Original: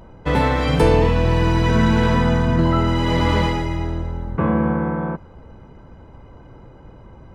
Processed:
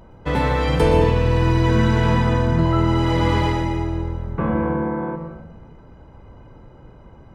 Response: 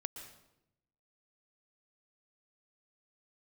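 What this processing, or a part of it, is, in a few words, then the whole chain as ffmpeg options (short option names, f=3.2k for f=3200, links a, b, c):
bathroom: -filter_complex "[1:a]atrim=start_sample=2205[a];[0:a][a]afir=irnorm=-1:irlink=0"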